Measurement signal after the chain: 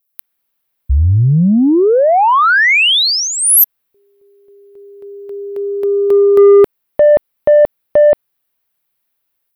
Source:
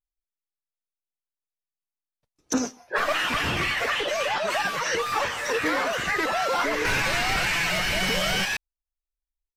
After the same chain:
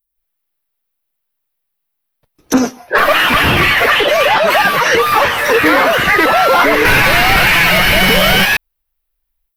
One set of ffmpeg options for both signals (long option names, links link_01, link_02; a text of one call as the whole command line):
ffmpeg -i in.wav -filter_complex "[0:a]acrossover=split=4500[link_01][link_02];[link_01]dynaudnorm=framelen=110:gausssize=3:maxgain=12dB[link_03];[link_03][link_02]amix=inputs=2:normalize=0,aexciter=amount=7:drive=5.3:freq=9800,asoftclip=type=tanh:threshold=-6dB,volume=4.5dB" out.wav